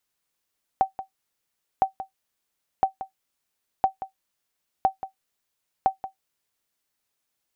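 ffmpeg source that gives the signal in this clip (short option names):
-f lavfi -i "aevalsrc='0.316*(sin(2*PI*769*mod(t,1.01))*exp(-6.91*mod(t,1.01)/0.12)+0.211*sin(2*PI*769*max(mod(t,1.01)-0.18,0))*exp(-6.91*max(mod(t,1.01)-0.18,0)/0.12))':d=6.06:s=44100"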